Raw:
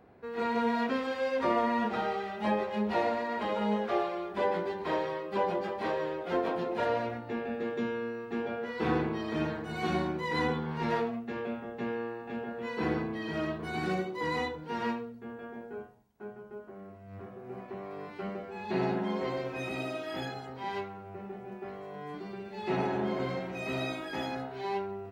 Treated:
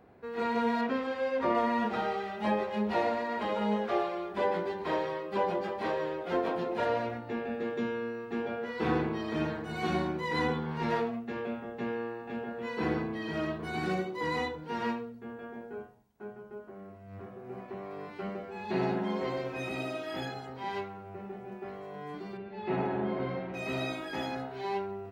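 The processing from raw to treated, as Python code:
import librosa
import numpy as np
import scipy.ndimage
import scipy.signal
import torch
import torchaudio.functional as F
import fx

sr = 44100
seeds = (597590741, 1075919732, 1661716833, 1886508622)

y = fx.high_shelf(x, sr, hz=4100.0, db=-9.5, at=(0.81, 1.55))
y = fx.air_absorb(y, sr, metres=270.0, at=(22.37, 23.54))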